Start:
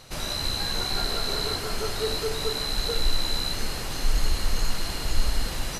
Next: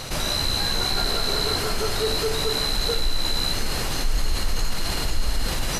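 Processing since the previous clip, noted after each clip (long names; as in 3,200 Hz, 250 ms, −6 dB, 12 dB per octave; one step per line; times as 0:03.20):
envelope flattener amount 50%
level −2.5 dB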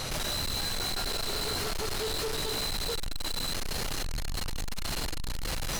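gain into a clipping stage and back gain 30 dB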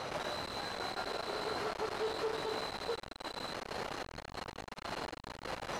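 resonant band-pass 740 Hz, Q 0.74
level +1 dB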